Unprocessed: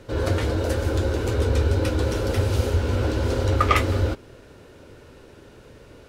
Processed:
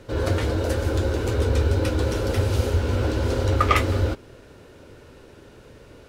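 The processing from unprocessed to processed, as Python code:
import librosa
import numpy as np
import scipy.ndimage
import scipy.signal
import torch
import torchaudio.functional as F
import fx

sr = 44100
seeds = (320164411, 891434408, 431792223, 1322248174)

y = fx.quant_float(x, sr, bits=6)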